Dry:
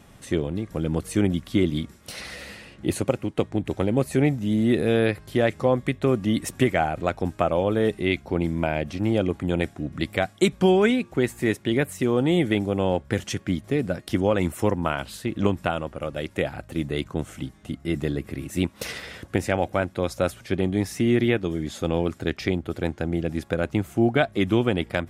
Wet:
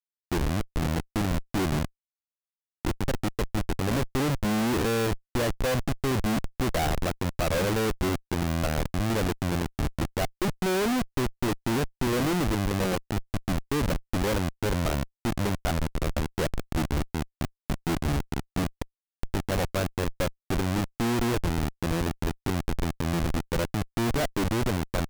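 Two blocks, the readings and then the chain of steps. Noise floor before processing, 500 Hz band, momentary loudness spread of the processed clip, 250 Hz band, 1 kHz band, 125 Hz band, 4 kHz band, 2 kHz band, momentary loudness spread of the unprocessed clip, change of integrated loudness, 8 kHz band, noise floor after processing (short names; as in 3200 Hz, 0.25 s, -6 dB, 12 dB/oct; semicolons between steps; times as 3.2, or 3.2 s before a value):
-51 dBFS, -6.5 dB, 5 LU, -5.0 dB, -1.5 dB, -1.5 dB, -1.0 dB, -3.5 dB, 9 LU, -4.0 dB, +2.0 dB, under -85 dBFS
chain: median filter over 15 samples; Schmitt trigger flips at -27.5 dBFS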